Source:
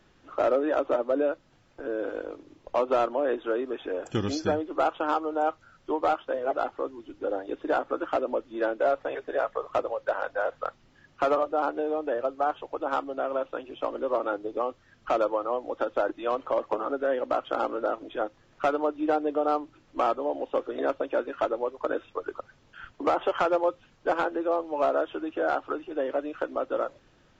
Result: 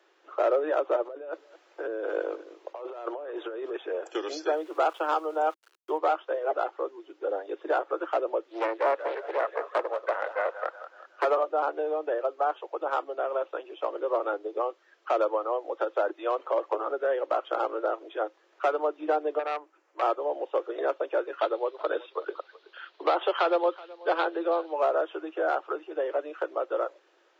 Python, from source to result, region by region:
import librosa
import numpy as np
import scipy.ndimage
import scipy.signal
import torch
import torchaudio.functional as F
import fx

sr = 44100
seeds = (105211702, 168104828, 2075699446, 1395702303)

y = fx.chain(x, sr, fx.over_compress(threshold_db=-34.0, ratio=-1.0),
    fx.echo_single(ms=219, db=-18.5), at=(1.05, 3.77))
y = fx.chain(y, sr, fx.high_shelf(hz=4000.0, db=7.0),
    fx.sample_gate(floor_db=-48.0), at=(4.53, 5.98))
y = fx.chain(y, sr, fx.echo_thinned(ms=185, feedback_pct=56, hz=630.0, wet_db=-10.0),
    fx.doppler_dist(depth_ms=0.59), at=(8.47, 11.25))
y = fx.chain(y, sr, fx.highpass(hz=640.0, slope=6),
    fx.peak_eq(hz=3700.0, db=-11.5, octaves=1.0),
    fx.transformer_sat(knee_hz=1500.0), at=(19.39, 20.02))
y = fx.chain(y, sr, fx.lowpass_res(hz=4000.0, q=3.7),
    fx.echo_single(ms=375, db=-21.0), at=(21.39, 24.73))
y = scipy.signal.sosfilt(scipy.signal.butter(12, 330.0, 'highpass', fs=sr, output='sos'), y)
y = fx.high_shelf(y, sr, hz=4100.0, db=-5.5)